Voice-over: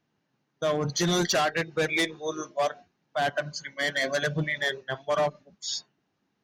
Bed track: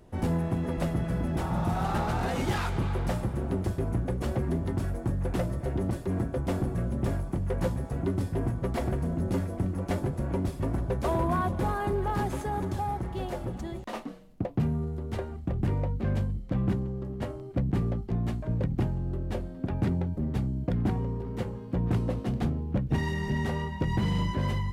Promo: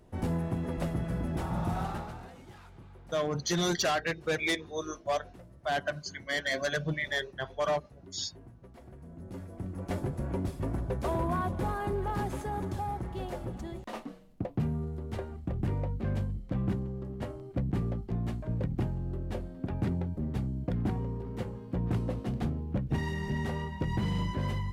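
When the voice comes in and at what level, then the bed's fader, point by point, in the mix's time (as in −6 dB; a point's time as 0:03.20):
2.50 s, −4.0 dB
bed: 0:01.80 −3.5 dB
0:02.41 −22.5 dB
0:08.82 −22.5 dB
0:09.98 −3.5 dB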